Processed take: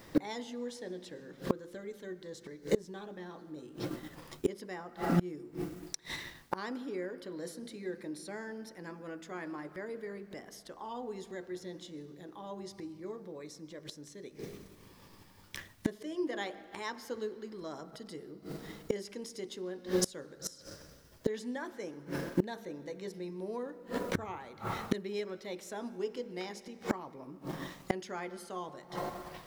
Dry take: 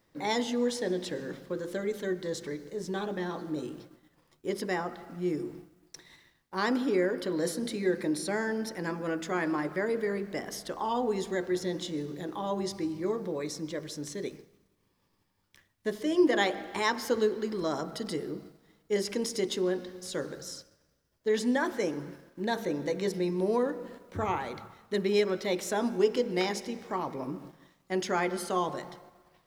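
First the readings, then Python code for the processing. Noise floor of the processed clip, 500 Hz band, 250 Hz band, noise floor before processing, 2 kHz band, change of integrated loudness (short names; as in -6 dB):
-57 dBFS, -8.5 dB, -7.0 dB, -72 dBFS, -9.0 dB, -8.0 dB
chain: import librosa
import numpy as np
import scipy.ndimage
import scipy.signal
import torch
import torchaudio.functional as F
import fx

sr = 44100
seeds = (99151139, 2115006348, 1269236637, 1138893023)

y = fx.gate_flip(x, sr, shuts_db=-32.0, range_db=-28)
y = y * librosa.db_to_amplitude(16.5)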